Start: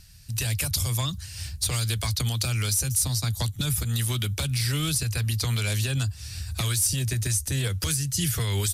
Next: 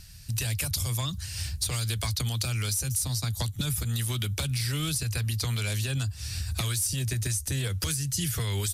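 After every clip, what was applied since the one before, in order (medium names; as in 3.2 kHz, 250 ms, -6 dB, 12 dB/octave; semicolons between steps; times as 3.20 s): compression 3:1, threshold -31 dBFS, peak gain reduction 8.5 dB; trim +3 dB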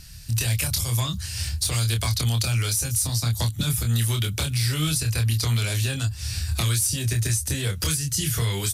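doubling 26 ms -4.5 dB; trim +3.5 dB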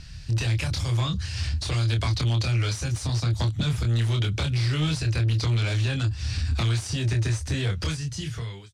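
fade out at the end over 1.12 s; saturation -22 dBFS, distortion -14 dB; distance through air 130 m; trim +3.5 dB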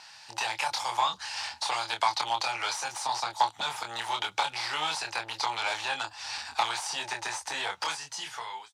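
resonant high-pass 860 Hz, resonance Q 9.1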